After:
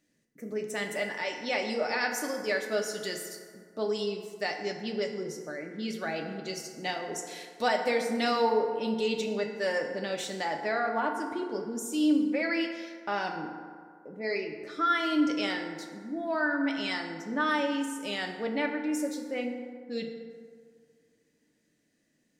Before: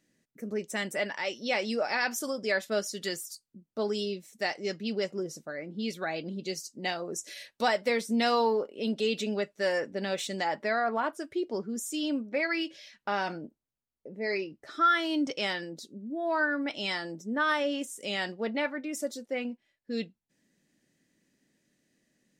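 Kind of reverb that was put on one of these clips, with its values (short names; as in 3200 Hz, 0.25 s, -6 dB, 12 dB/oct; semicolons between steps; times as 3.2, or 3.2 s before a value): FDN reverb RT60 2 s, low-frequency decay 0.85×, high-frequency decay 0.45×, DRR 3 dB; gain -2 dB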